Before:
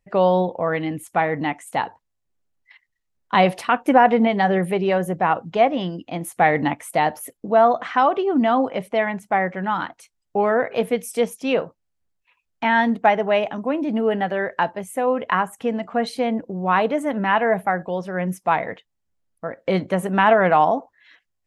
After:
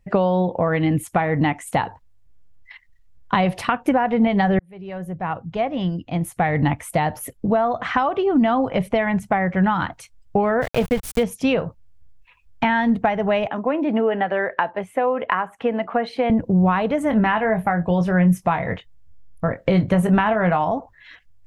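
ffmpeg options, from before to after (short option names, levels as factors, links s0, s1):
-filter_complex "[0:a]asplit=3[s0][s1][s2];[s0]afade=t=out:st=10.61:d=0.02[s3];[s1]aeval=exprs='val(0)*gte(abs(val(0)),0.0316)':c=same,afade=t=in:st=10.61:d=0.02,afade=t=out:st=11.22:d=0.02[s4];[s2]afade=t=in:st=11.22:d=0.02[s5];[s3][s4][s5]amix=inputs=3:normalize=0,asettb=1/sr,asplit=3[s6][s7][s8];[s6]atrim=end=13.474[s9];[s7]atrim=start=13.47:end=16.3,asetpts=PTS-STARTPTS,afade=t=in:d=0.004:c=qsin,afade=t=out:st=2.826:d=0.004:c=qsin,acrossover=split=270 3500:gain=0.0794 1 0.112[s10][s11][s12];[s10][s11][s12]amix=inputs=3:normalize=0[s13];[s8]atrim=start=16.296[s14];[s9][s13]acrossfade=d=0.004:c1=hsin:c2=qsin[s15];[s15][s14]acrossfade=d=0.004:c1=qsin:c2=hsin,asettb=1/sr,asplit=3[s16][s17][s18];[s16]atrim=end=17.084[s19];[s17]atrim=start=17.08:end=20.68,asetpts=PTS-STARTPTS,afade=t=in:d=0.004:c=qsin,afade=t=out:st=3.596:d=0.004:c=qsin,asplit=2[s20][s21];[s21]adelay=23,volume=0.355[s22];[s20][s22]amix=inputs=2:normalize=0,atrim=end_sample=158760[s23];[s18]atrim=start=20.676[s24];[s19][s23]acrossfade=d=0.004:c1=hsin:c2=qsin[s25];[s25][s24]acrossfade=d=0.004:c1=qsin:c2=hsin,asplit=2[s26][s27];[s26]atrim=end=4.59,asetpts=PTS-STARTPTS,afade=t=out:st=4.586:d=0.004:c=hsin[s28];[s27]atrim=start=4.59,asetpts=PTS-STARTPTS,afade=t=in:d=3.57[s29];[s28][s29]concat=n=2:v=0:a=1,asubboost=boost=4.5:cutoff=110,acompressor=threshold=0.0562:ratio=6,bass=f=250:g=8,treble=f=4000:g=-3,volume=2.37"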